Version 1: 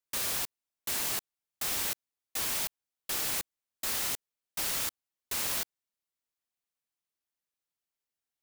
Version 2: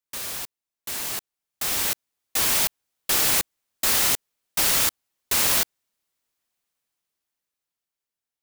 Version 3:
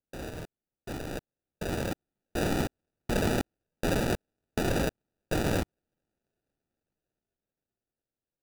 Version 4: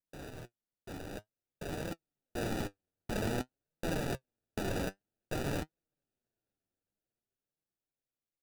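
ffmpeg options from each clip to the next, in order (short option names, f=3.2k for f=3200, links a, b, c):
-af "dynaudnorm=f=280:g=13:m=11.5dB"
-af "acrusher=samples=41:mix=1:aa=0.000001,volume=-6.5dB"
-af "flanger=delay=5.8:depth=5.1:regen=54:speed=0.52:shape=triangular,volume=-3dB"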